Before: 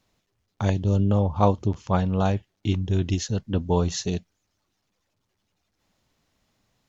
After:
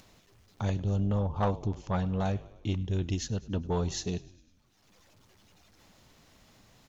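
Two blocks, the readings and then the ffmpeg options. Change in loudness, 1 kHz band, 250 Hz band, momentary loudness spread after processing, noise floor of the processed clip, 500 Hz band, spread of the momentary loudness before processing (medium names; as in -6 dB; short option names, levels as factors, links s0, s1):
-7.0 dB, -8.0 dB, -7.5 dB, 6 LU, -65 dBFS, -8.0 dB, 7 LU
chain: -filter_complex "[0:a]acompressor=mode=upward:threshold=0.0112:ratio=2.5,asplit=6[s0][s1][s2][s3][s4][s5];[s1]adelay=101,afreqshift=-43,volume=0.0891[s6];[s2]adelay=202,afreqshift=-86,volume=0.0525[s7];[s3]adelay=303,afreqshift=-129,volume=0.0309[s8];[s4]adelay=404,afreqshift=-172,volume=0.0184[s9];[s5]adelay=505,afreqshift=-215,volume=0.0108[s10];[s0][s6][s7][s8][s9][s10]amix=inputs=6:normalize=0,asoftclip=type=tanh:threshold=0.2,volume=0.531"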